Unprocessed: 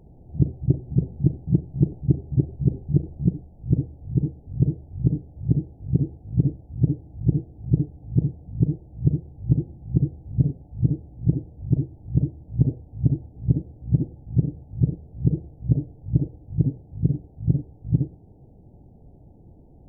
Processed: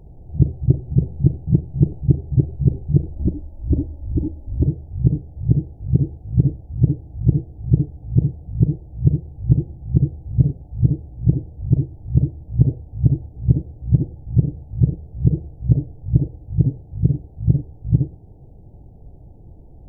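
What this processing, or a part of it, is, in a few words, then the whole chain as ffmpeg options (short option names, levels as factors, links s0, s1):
low shelf boost with a cut just above: -filter_complex "[0:a]lowshelf=f=78:g=8,equalizer=f=230:t=o:w=0.77:g=-4.5,asettb=1/sr,asplit=3[s0][s1][s2];[s0]atrim=end=3.164[s3];[s1]atrim=start=3.16:end=4.66,asetpts=PTS-STARTPTS,afade=t=in:d=0.004:c=qsin,afade=t=out:st=1.496:d=0.004:c=qsin,aecho=1:1:3.4:0.93,atrim=end_sample=66150[s4];[s2]atrim=start=4.656[s5];[s3][s4]acrossfade=d=0.004:c1=hsin:c2=qsin[s6];[s6][s5]acrossfade=d=0.004:c1=qsin:c2=hsin,volume=1.5"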